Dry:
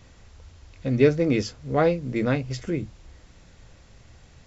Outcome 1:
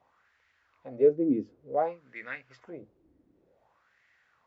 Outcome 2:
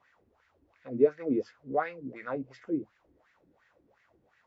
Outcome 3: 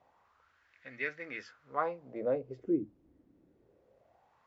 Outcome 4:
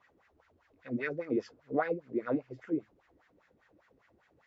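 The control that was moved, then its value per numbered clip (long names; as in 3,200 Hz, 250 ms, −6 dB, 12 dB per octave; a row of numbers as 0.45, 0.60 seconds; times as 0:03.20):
LFO wah, speed: 0.55, 2.8, 0.24, 5 Hertz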